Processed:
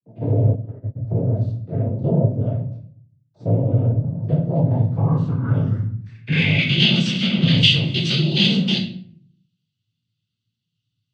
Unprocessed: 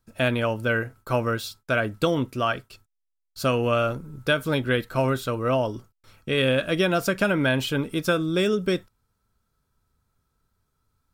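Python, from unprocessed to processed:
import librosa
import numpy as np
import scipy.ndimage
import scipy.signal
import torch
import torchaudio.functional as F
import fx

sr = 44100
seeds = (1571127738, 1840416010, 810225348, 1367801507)

y = fx.spec_steps(x, sr, hold_ms=50)
y = scipy.signal.sosfilt(scipy.signal.cheby1(2, 1.0, [140.0, 5100.0], 'bandstop', fs=sr, output='sos'), y)
y = fx.peak_eq(y, sr, hz=1100.0, db=10.5, octaves=0.37)
y = fx.leveller(y, sr, passes=2)
y = fx.filter_sweep_lowpass(y, sr, from_hz=570.0, to_hz=3200.0, start_s=4.44, end_s=6.82, q=7.2)
y = fx.noise_vocoder(y, sr, seeds[0], bands=16)
y = fx.room_shoebox(y, sr, seeds[1], volume_m3=65.0, walls='mixed', distance_m=0.69)
y = fx.upward_expand(y, sr, threshold_db=-33.0, expansion=2.5, at=(0.54, 0.95), fade=0.02)
y = y * 10.0 ** (5.5 / 20.0)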